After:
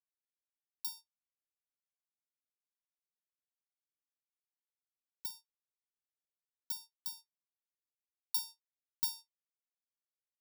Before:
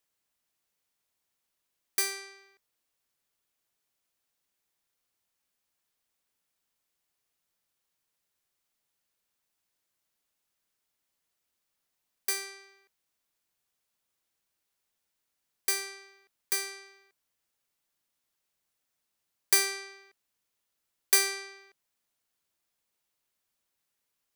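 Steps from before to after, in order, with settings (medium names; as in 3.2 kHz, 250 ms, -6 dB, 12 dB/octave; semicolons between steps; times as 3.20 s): pre-emphasis filter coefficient 0.97; expander -52 dBFS; peaking EQ 5.7 kHz -14.5 dB 1.6 oct; speed mistake 33 rpm record played at 78 rpm; Butterworth band-stop 2.1 kHz, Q 0.95; trim +7.5 dB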